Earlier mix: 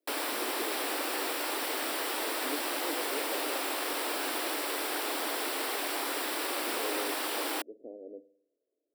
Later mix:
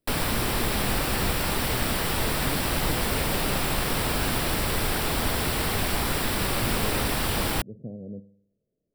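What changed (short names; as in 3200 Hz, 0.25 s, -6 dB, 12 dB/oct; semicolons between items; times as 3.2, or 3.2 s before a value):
background +4.5 dB; master: remove elliptic high-pass 290 Hz, stop band 40 dB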